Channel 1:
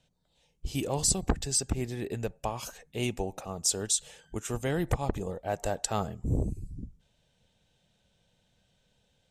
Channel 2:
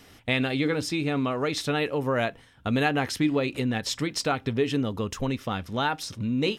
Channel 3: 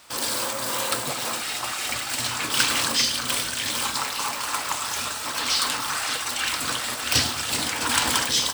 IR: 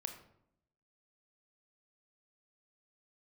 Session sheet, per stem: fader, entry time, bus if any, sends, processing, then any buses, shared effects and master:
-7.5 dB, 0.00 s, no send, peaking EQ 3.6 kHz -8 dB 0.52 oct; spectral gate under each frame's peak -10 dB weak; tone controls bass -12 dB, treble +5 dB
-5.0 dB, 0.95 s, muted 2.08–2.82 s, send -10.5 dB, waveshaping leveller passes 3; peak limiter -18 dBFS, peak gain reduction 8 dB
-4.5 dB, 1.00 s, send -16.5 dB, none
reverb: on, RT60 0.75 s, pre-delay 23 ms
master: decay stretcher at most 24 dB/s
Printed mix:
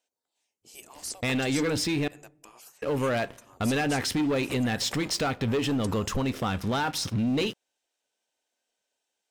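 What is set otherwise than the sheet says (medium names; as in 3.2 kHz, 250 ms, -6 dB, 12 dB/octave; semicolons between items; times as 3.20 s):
stem 3: muted; master: missing decay stretcher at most 24 dB/s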